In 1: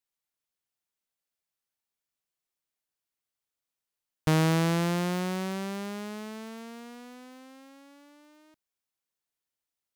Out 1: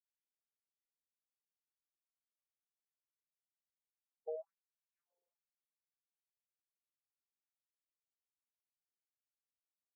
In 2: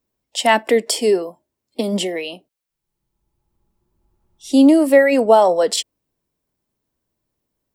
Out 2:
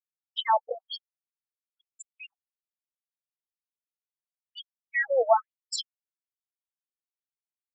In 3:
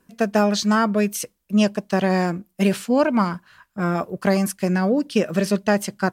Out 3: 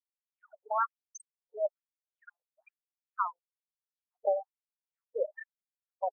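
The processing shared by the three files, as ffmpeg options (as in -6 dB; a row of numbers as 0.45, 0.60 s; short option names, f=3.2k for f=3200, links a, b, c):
-af "afftfilt=real='re*gte(hypot(re,im),0.178)':imag='im*gte(hypot(re,im),0.178)':win_size=1024:overlap=0.75,afftfilt=real='re*between(b*sr/1024,600*pow(7700/600,0.5+0.5*sin(2*PI*1.1*pts/sr))/1.41,600*pow(7700/600,0.5+0.5*sin(2*PI*1.1*pts/sr))*1.41)':imag='im*between(b*sr/1024,600*pow(7700/600,0.5+0.5*sin(2*PI*1.1*pts/sr))/1.41,600*pow(7700/600,0.5+0.5*sin(2*PI*1.1*pts/sr))*1.41)':win_size=1024:overlap=0.75,volume=-4.5dB"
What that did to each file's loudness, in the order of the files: -18.0, -12.0, -13.5 LU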